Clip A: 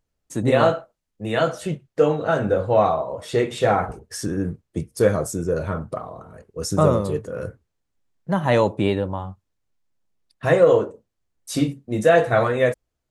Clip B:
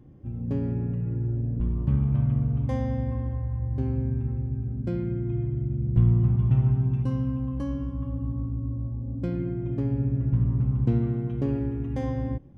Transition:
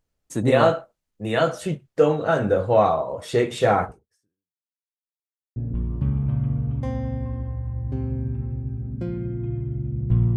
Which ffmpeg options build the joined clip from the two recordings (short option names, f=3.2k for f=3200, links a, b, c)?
-filter_complex "[0:a]apad=whole_dur=10.36,atrim=end=10.36,asplit=2[a][b];[a]atrim=end=4.68,asetpts=PTS-STARTPTS,afade=t=out:st=3.83:d=0.85:c=exp[c];[b]atrim=start=4.68:end=5.56,asetpts=PTS-STARTPTS,volume=0[d];[1:a]atrim=start=1.42:end=6.22,asetpts=PTS-STARTPTS,afade=t=in:d=0.004:c=hsin[e];[c][d][e]concat=n=3:v=0:a=1"